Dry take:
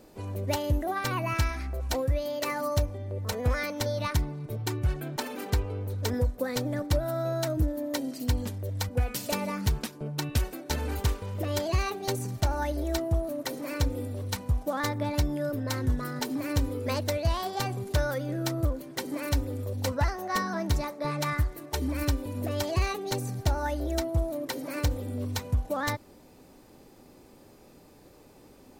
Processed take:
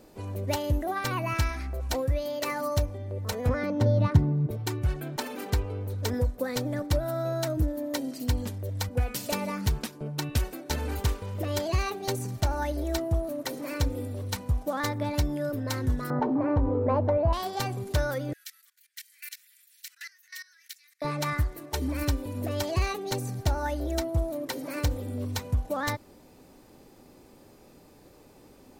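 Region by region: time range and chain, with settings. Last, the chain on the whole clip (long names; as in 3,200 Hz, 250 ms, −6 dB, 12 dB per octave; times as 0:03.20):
0:03.49–0:04.51: high-pass filter 110 Hz 24 dB per octave + spectral tilt −4.5 dB per octave + notch filter 2,300 Hz, Q 20
0:16.10–0:17.33: low-pass with resonance 920 Hz, resonance Q 1.8 + envelope flattener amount 50%
0:18.33–0:21.02: Butterworth high-pass 1,700 Hz 48 dB per octave + high-shelf EQ 9,200 Hz +7.5 dB + output level in coarse steps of 20 dB
whole clip: no processing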